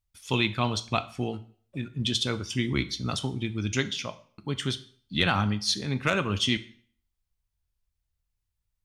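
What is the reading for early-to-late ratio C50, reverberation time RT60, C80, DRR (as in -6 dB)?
16.5 dB, 0.50 s, 20.5 dB, 11.5 dB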